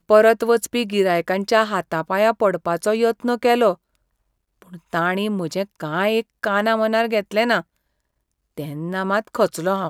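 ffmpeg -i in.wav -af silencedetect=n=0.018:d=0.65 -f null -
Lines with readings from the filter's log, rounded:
silence_start: 3.74
silence_end: 4.62 | silence_duration: 0.88
silence_start: 7.61
silence_end: 8.58 | silence_duration: 0.96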